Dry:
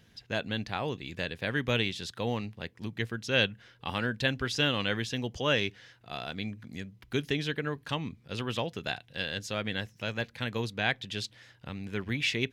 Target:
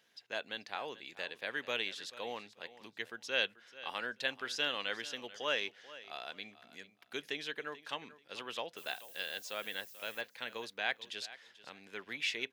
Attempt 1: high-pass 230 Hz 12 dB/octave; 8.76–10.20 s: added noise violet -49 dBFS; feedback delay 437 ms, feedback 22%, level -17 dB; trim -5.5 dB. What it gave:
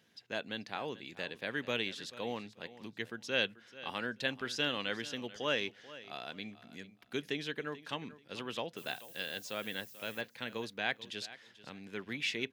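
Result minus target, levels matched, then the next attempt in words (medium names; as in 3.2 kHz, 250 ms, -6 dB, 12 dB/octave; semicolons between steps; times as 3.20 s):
250 Hz band +8.5 dB
high-pass 500 Hz 12 dB/octave; 8.76–10.20 s: added noise violet -49 dBFS; feedback delay 437 ms, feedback 22%, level -17 dB; trim -5.5 dB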